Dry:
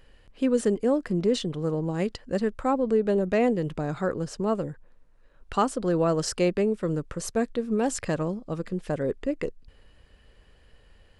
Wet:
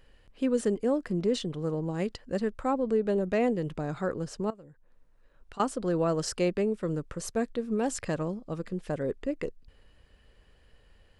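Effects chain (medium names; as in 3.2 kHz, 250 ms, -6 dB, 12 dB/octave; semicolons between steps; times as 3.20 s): 4.50–5.60 s: compression 6:1, threshold -43 dBFS, peak gain reduction 20 dB; trim -3.5 dB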